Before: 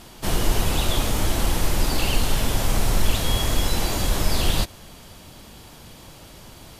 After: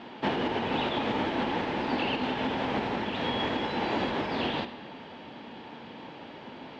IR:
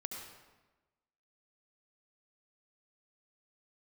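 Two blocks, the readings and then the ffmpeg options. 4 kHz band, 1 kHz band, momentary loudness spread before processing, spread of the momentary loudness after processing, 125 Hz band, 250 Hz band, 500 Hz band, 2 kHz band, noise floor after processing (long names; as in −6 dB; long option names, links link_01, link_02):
−7.5 dB, +0.5 dB, 21 LU, 15 LU, −14.5 dB, −1.0 dB, −1.0 dB, −2.0 dB, −45 dBFS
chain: -filter_complex "[0:a]equalizer=frequency=1100:width=0.79:gain=-5,alimiter=limit=-15.5dB:level=0:latency=1:release=255,highpass=240,equalizer=frequency=250:width_type=q:width=4:gain=7,equalizer=frequency=460:width_type=q:width=4:gain=3,equalizer=frequency=880:width_type=q:width=4:gain=9,equalizer=frequency=1700:width_type=q:width=4:gain=4,lowpass=frequency=3100:width=0.5412,lowpass=frequency=3100:width=1.3066,asplit=2[link_01][link_02];[1:a]atrim=start_sample=2205[link_03];[link_02][link_03]afir=irnorm=-1:irlink=0,volume=-4dB[link_04];[link_01][link_04]amix=inputs=2:normalize=0"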